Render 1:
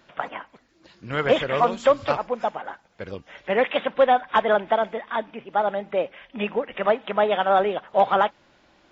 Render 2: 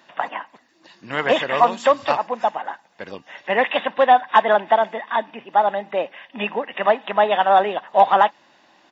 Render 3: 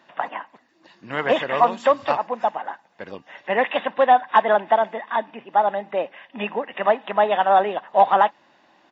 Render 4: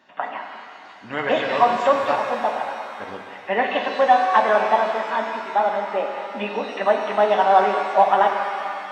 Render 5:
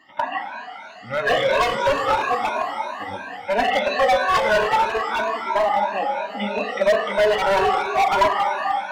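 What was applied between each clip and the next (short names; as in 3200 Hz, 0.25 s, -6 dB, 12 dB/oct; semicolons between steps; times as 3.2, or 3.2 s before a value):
HPF 270 Hz 12 dB/oct; comb 1.1 ms, depth 43%; gain +4 dB
high shelf 3600 Hz -8.5 dB; gain -1 dB
notch comb 170 Hz; shimmer reverb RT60 2.3 s, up +7 st, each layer -8 dB, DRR 3 dB
moving spectral ripple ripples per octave 1.5, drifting +3 Hz, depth 19 dB; overloaded stage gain 14 dB; cascading flanger falling 0.36 Hz; gain +4 dB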